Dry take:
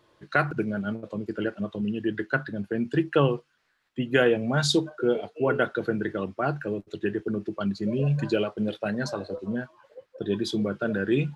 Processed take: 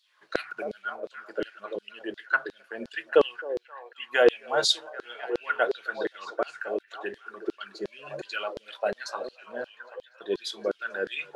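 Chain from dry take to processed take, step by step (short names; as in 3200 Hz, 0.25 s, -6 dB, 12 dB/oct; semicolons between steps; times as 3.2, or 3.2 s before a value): delay with a stepping band-pass 0.263 s, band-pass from 440 Hz, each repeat 0.7 oct, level -7 dB; LFO high-pass saw down 2.8 Hz 380–4400 Hz; gain -2 dB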